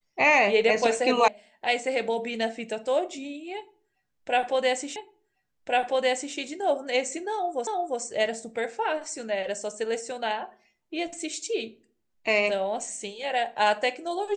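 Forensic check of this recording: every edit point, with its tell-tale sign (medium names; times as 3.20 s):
1.28 s: sound stops dead
4.96 s: repeat of the last 1.4 s
7.67 s: repeat of the last 0.35 s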